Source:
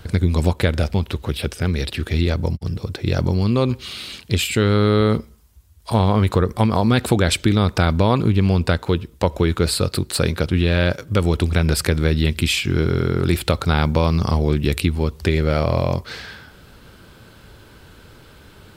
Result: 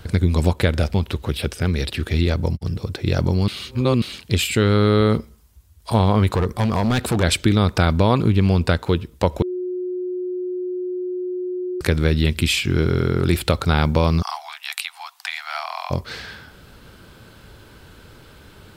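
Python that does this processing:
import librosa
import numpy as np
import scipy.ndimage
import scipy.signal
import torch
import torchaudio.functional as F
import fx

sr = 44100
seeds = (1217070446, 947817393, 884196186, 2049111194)

y = fx.overload_stage(x, sr, gain_db=15.0, at=(6.35, 7.23))
y = fx.steep_highpass(y, sr, hz=710.0, slope=96, at=(14.21, 15.9), fade=0.02)
y = fx.edit(y, sr, fx.reverse_span(start_s=3.48, length_s=0.54),
    fx.bleep(start_s=9.42, length_s=2.39, hz=363.0, db=-23.0), tone=tone)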